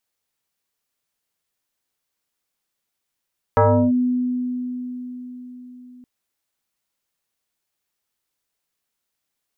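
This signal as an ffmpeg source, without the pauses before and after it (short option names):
-f lavfi -i "aevalsrc='0.299*pow(10,-3*t/4.75)*sin(2*PI*249*t+2.9*clip(1-t/0.35,0,1)*sin(2*PI*1.41*249*t))':d=2.47:s=44100"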